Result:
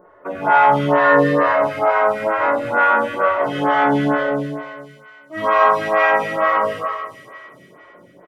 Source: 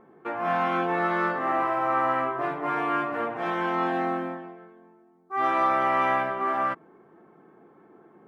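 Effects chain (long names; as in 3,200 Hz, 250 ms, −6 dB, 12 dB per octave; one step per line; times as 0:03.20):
comb filter 1.6 ms, depth 46%
phase-vocoder pitch shift with formants kept −3.5 semitones
delay with a high-pass on its return 92 ms, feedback 85%, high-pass 4,200 Hz, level −4 dB
four-comb reverb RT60 1.4 s, combs from 31 ms, DRR −2 dB
phaser with staggered stages 2.2 Hz
level +7.5 dB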